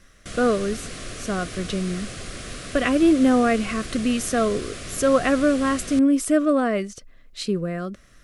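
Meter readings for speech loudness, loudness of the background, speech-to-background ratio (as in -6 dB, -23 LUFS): -22.0 LUFS, -35.0 LUFS, 13.0 dB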